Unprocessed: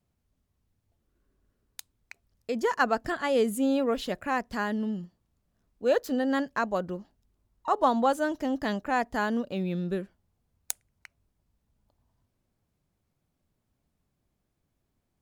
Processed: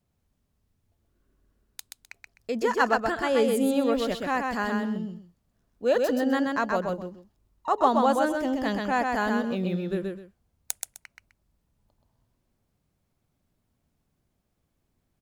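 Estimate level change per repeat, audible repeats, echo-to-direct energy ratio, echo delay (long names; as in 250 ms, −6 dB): −12.5 dB, 2, −3.5 dB, 128 ms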